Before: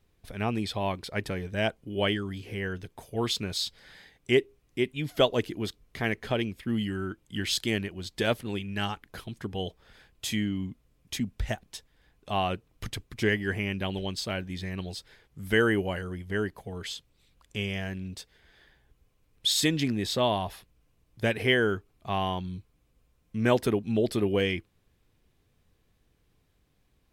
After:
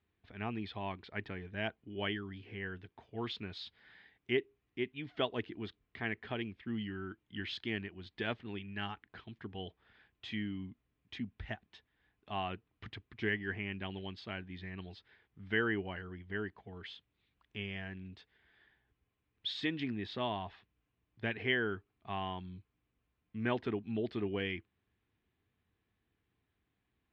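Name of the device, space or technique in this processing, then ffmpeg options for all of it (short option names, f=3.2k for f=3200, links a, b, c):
guitar cabinet: -af "highpass=78,equalizer=f=150:t=q:w=4:g=-7,equalizer=f=540:t=q:w=4:g=-9,equalizer=f=1.8k:t=q:w=4:g=3,lowpass=f=3.5k:w=0.5412,lowpass=f=3.5k:w=1.3066,volume=-8.5dB"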